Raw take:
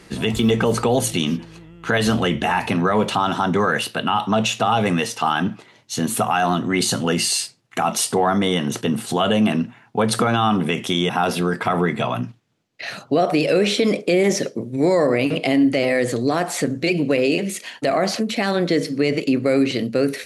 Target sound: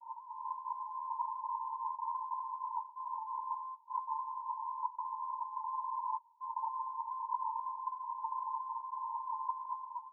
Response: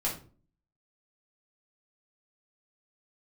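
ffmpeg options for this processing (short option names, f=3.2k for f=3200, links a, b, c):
-af "afftfilt=real='re*lt(hypot(re,im),0.398)':imag='im*lt(hypot(re,im),0.398)':win_size=1024:overlap=0.75,acompressor=threshold=-32dB:ratio=20,alimiter=level_in=8dB:limit=-24dB:level=0:latency=1:release=12,volume=-8dB,aeval=exprs='val(0)*sin(2*PI*260*n/s)':c=same,dynaudnorm=f=100:g=17:m=10.5dB,aeval=exprs='clip(val(0),-1,0.00794)':c=same,asuperpass=centerf=480:order=20:qfactor=5.5,asetrate=88200,aresample=44100,volume=8dB"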